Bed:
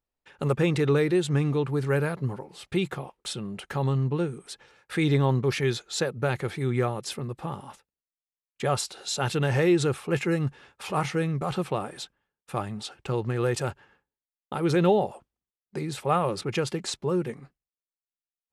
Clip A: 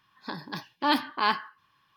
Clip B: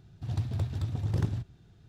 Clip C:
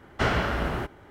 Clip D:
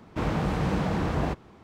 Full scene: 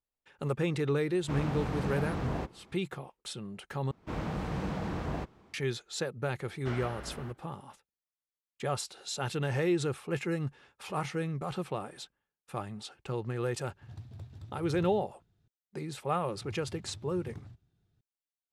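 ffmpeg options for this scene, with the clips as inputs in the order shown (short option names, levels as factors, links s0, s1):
-filter_complex "[4:a]asplit=2[s0][s1];[2:a]asplit=2[s2][s3];[0:a]volume=0.447[s4];[s1]dynaudnorm=f=100:g=3:m=1.78[s5];[s4]asplit=2[s6][s7];[s6]atrim=end=3.914[s8];[s5]atrim=end=1.63,asetpts=PTS-STARTPTS,volume=0.224[s9];[s7]atrim=start=5.536[s10];[s0]atrim=end=1.63,asetpts=PTS-STARTPTS,volume=0.422,afade=t=in:d=0.004:c=hsin,afade=t=out:st=1.626:d=0.004:c=hsin,adelay=1120[s11];[3:a]atrim=end=1.1,asetpts=PTS-STARTPTS,volume=0.15,afade=t=in:d=0.004:c=hsin,afade=t=out:st=1.096:d=0.004:c=hsin,adelay=6460[s12];[s2]atrim=end=1.88,asetpts=PTS-STARTPTS,volume=0.178,afade=t=in:d=0.004:c=hsin,afade=t=out:st=1.876:d=0.004:c=hsin,adelay=13600[s13];[s3]atrim=end=1.88,asetpts=PTS-STARTPTS,volume=0.141,afade=t=in:d=0.004:c=hsin,afade=t=out:st=1.876:d=0.004:c=hsin,adelay=16130[s14];[s8][s9]acrossfade=d=0.004:c1=hsin:c2=hsin[s15];[s15][s10]acrossfade=d=0.004:c1=hsin:c2=hsin[s16];[s16][s11][s12][s13][s14]amix=inputs=5:normalize=0"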